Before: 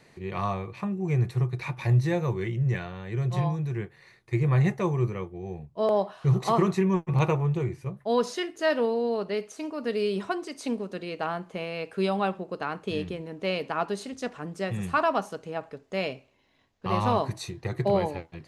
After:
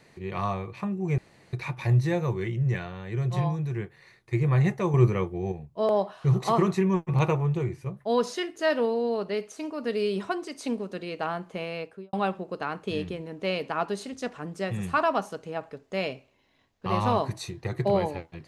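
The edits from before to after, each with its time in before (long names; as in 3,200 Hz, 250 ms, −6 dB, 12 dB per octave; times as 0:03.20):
0:01.18–0:01.53: fill with room tone
0:04.94–0:05.52: clip gain +6.5 dB
0:11.72–0:12.13: fade out and dull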